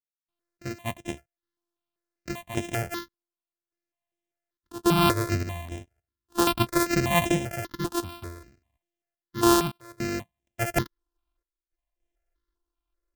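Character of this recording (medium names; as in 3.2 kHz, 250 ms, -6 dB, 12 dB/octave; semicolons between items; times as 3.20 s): a buzz of ramps at a fixed pitch in blocks of 128 samples; random-step tremolo, depth 100%; notches that jump at a steady rate 5.1 Hz 590–4500 Hz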